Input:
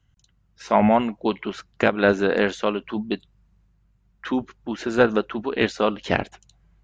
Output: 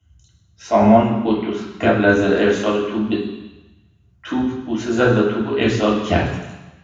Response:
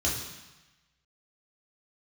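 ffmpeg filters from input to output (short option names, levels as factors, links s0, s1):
-filter_complex "[0:a]asettb=1/sr,asplit=3[s0][s1][s2];[s0]atrim=end=0.714[s3];[s1]atrim=start=0.71:end=2.09,asetpts=PTS-STARTPTS,afade=t=in:d=0.004:c=qsin,afade=t=out:st=1.376:d=0.004:c=qsin,lowpass=f=3800:p=1[s4];[s2]atrim=start=2.086[s5];[s3][s4]acrossfade=d=0.004:c1=hsin:c2=qsin[s6];[s6][s5]acrossfade=d=0.004:c1=qsin:c2=hsin[s7];[1:a]atrim=start_sample=2205[s8];[s7][s8]afir=irnorm=-1:irlink=0,volume=0.501"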